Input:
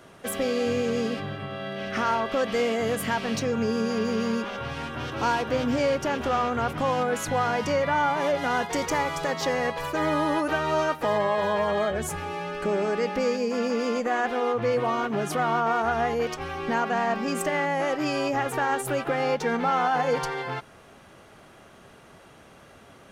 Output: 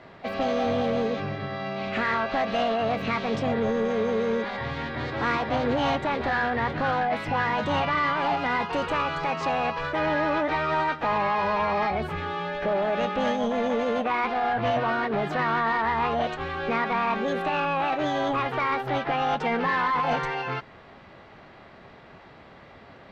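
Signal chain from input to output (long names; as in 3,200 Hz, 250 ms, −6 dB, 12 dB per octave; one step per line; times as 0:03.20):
high-shelf EQ 9,100 Hz −9 dB
formants moved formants +5 semitones
soft clipping −21.5 dBFS, distortion −14 dB
high-frequency loss of the air 210 metres
level +3.5 dB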